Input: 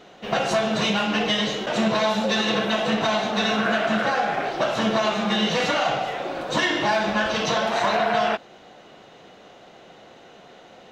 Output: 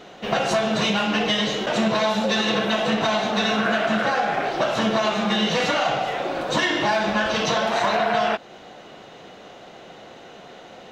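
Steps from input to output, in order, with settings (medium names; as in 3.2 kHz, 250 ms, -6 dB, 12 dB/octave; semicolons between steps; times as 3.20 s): compression 1.5:1, threshold -29 dBFS, peak gain reduction 4.5 dB; trim +4.5 dB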